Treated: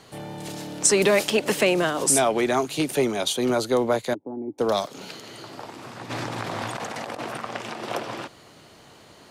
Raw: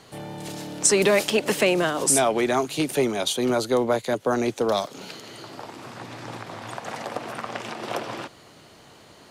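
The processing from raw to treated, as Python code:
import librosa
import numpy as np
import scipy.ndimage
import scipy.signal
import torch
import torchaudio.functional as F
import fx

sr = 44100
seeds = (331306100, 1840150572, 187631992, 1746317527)

y = fx.formant_cascade(x, sr, vowel='u', at=(4.13, 4.58), fade=0.02)
y = fx.over_compress(y, sr, threshold_db=-38.0, ratio=-1.0, at=(6.09, 7.39), fade=0.02)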